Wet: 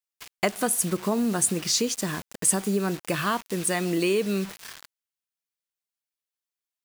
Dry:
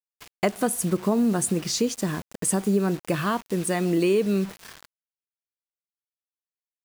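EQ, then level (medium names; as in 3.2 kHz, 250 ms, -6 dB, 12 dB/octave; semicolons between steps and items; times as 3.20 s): tilt shelf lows -4 dB; 0.0 dB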